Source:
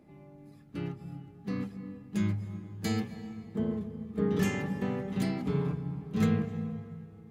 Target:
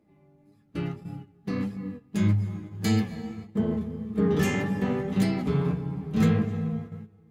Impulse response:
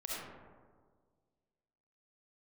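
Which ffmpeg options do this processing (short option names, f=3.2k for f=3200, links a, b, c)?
-filter_complex "[0:a]agate=range=-13dB:threshold=-43dB:ratio=16:detection=peak,asplit=2[a][b];[b]volume=29.5dB,asoftclip=hard,volume=-29.5dB,volume=-9.5dB[c];[a][c]amix=inputs=2:normalize=0,flanger=delay=9.4:depth=3.7:regen=45:speed=1.7:shape=sinusoidal,volume=7.5dB"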